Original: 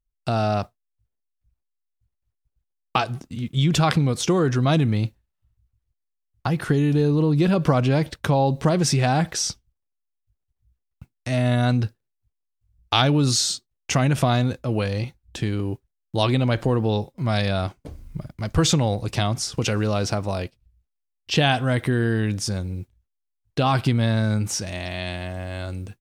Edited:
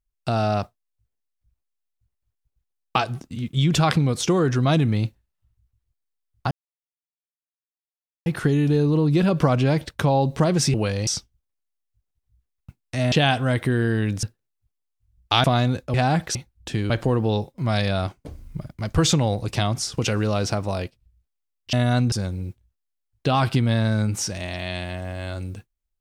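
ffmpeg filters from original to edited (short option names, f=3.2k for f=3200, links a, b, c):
-filter_complex "[0:a]asplit=12[a][b][c][d][e][f][g][h][i][j][k][l];[a]atrim=end=6.51,asetpts=PTS-STARTPTS,afade=t=out:st=6.506:d=0.004:c=hsin,apad=pad_dur=1.75[m];[b]atrim=start=6.51:end=8.992,asetpts=PTS-STARTPTS,afade=t=in:d=0.004:c=hsin[n];[c]atrim=start=14.698:end=15.032[o];[d]atrim=start=9.398:end=11.452[p];[e]atrim=start=21.328:end=22.442[q];[f]atrim=start=11.838:end=13.052[r];[g]atrim=start=14.198:end=14.702[s];[h]atrim=start=8.988:end=9.402[t];[i]atrim=start=15.028:end=15.582[u];[j]atrim=start=16.498:end=21.332[v];[k]atrim=start=11.448:end=11.842[w];[l]atrim=start=22.438[x];[m][n]concat=n=2:v=0:a=1[y];[y][o]acrossfade=d=0.004:c1=hsin:c2=hsin[z];[z][p]acrossfade=d=0.004:c1=hsin:c2=hsin[aa];[aa][q]acrossfade=d=0.004:c1=hsin:c2=hsin[ab];[ab][r]acrossfade=d=0.004:c1=hsin:c2=hsin[ac];[ac][s]acrossfade=d=0.004:c1=hsin:c2=hsin[ad];[ad][t]acrossfade=d=0.004:c1=hsin:c2=hsin[ae];[ae][u]acrossfade=d=0.004:c1=hsin:c2=hsin[af];[af][v]acrossfade=d=0.004:c1=hsin:c2=hsin[ag];[ag][w]acrossfade=d=0.004:c1=hsin:c2=hsin[ah];[ah][x]acrossfade=d=0.004:c1=hsin:c2=hsin"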